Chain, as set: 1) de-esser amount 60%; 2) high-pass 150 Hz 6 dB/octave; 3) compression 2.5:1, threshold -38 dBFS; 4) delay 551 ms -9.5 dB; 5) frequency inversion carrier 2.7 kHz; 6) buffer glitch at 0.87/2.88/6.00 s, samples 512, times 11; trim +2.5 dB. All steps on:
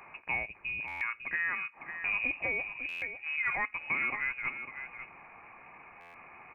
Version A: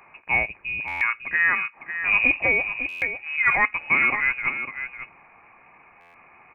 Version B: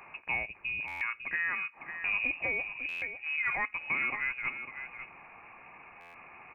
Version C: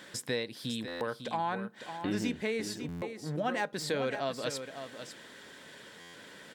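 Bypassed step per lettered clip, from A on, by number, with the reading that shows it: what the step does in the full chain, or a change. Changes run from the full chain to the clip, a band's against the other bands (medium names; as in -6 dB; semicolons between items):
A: 3, mean gain reduction 6.0 dB; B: 2, 4 kHz band +2.5 dB; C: 5, 2 kHz band -23.5 dB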